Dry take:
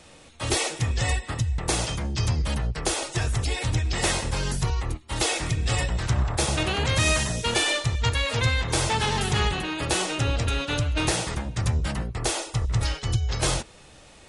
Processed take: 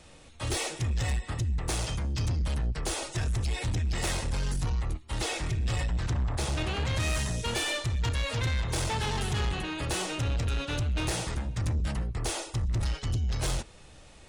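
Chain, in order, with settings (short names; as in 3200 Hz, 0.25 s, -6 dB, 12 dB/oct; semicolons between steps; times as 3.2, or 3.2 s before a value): low shelf 96 Hz +8.5 dB; soft clip -19.5 dBFS, distortion -12 dB; 5.16–7.1 high shelf 9900 Hz -8 dB; gain -4.5 dB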